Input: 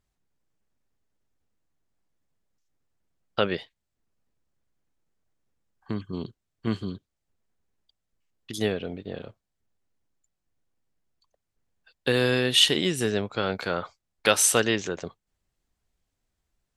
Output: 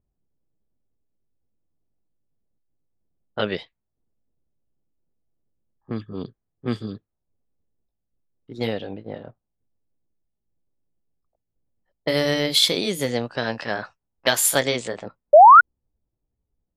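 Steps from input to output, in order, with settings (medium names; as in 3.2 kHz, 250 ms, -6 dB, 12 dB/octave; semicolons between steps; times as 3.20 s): pitch bend over the whole clip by +3.5 st starting unshifted; level-controlled noise filter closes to 550 Hz, open at -24 dBFS; painted sound rise, 15.33–15.61 s, 560–1500 Hz -10 dBFS; trim +2.5 dB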